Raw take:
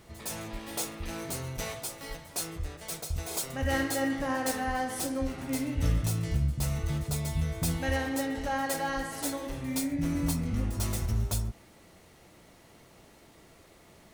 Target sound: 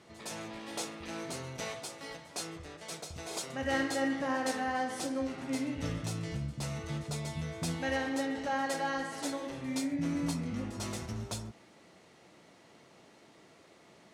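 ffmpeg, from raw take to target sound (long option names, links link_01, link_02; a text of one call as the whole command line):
ffmpeg -i in.wav -af "highpass=160,lowpass=7000,volume=-1.5dB" out.wav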